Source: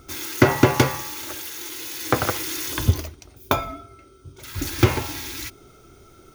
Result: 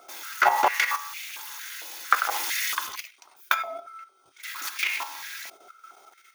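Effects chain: level held to a coarse grid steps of 10 dB; step-sequenced high-pass 4.4 Hz 680–2300 Hz

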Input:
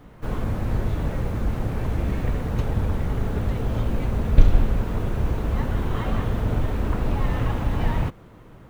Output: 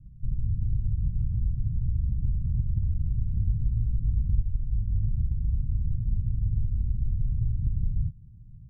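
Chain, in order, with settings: inverse Chebyshev low-pass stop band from 840 Hz, stop band 80 dB; compression, threshold -24 dBFS, peak gain reduction 17.5 dB; 3.31–5.09 s: doubling 20 ms -7 dB; trim +2.5 dB

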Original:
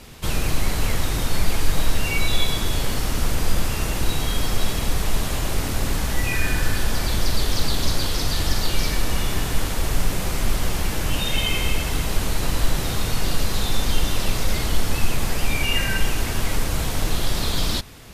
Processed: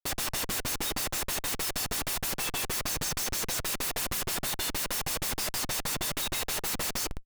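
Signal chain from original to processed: differentiator; plain phase-vocoder stretch 0.54×; tone controls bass -9 dB, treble +4 dB; comb 1.5 ms, depth 77%; granulator 203 ms, grains 4.7 per s, pitch spread up and down by 0 st; spring tank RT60 2 s, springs 56 ms, chirp 60 ms, DRR 14 dB; speed mistake 33 rpm record played at 45 rpm; band-stop 3.2 kHz, Q 6.8; Schmitt trigger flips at -41 dBFS; trim +5.5 dB

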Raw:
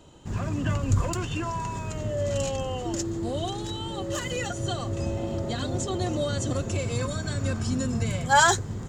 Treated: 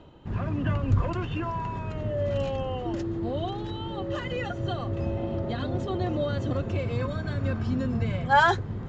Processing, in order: Bessel low-pass 2.6 kHz, order 4; reverse; upward compressor, threshold -38 dBFS; reverse

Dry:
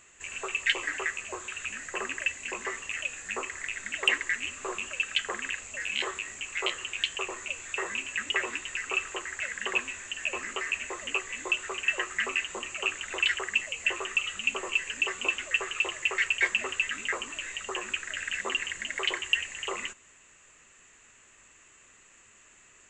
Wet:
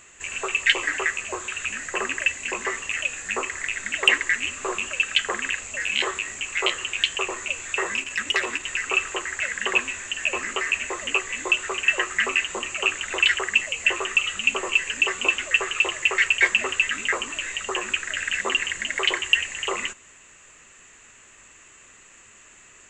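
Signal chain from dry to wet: 7.95–8.64 s: transformer saturation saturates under 2.5 kHz; trim +7 dB

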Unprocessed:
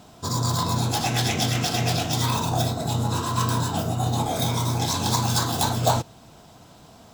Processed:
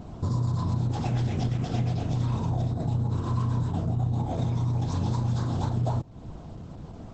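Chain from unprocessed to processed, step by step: tilt EQ -4 dB/octave; compression 5:1, threshold -25 dBFS, peak gain reduction 14.5 dB; Opus 10 kbps 48 kHz

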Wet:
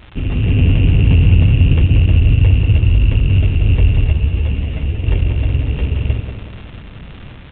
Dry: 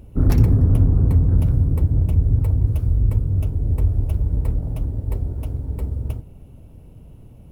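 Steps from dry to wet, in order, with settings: sorted samples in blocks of 16 samples; peak limiter -12.5 dBFS, peak gain reduction 9.5 dB; level rider gain up to 9 dB; crackle 320 per s -23 dBFS; tape echo 184 ms, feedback 61%, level -4.5 dB, low-pass 2 kHz; resampled via 8 kHz; 4.13–5.03 s: three-phase chorus

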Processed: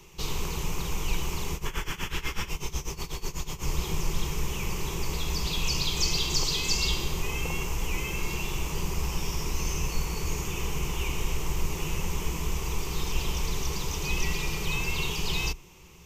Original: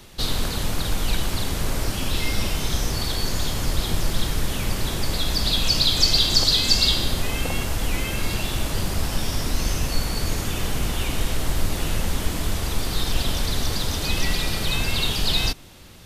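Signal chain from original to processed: rippled EQ curve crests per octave 0.75, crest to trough 12 dB; 1.65–2.49 s: painted sound noise 810–3500 Hz -28 dBFS; 1.54–3.63 s: tremolo 8.1 Hz, depth 87%; trim -7.5 dB

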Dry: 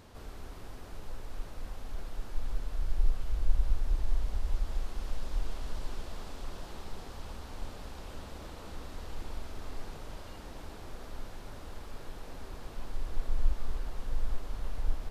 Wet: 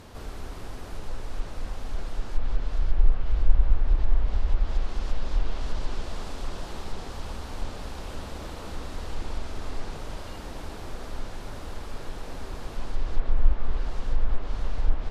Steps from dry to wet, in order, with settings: low-pass that closes with the level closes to 2.6 kHz, closed at -21 dBFS; trim +7.5 dB

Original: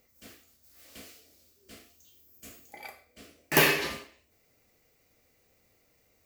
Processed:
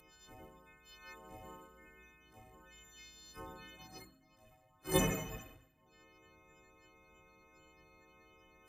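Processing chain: partials quantised in pitch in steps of 3 st; spectral gate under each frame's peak -20 dB weak; peaking EQ 290 Hz -8 dB 0.22 oct; de-hum 92.66 Hz, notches 5; wide varispeed 0.72×; trim +8 dB

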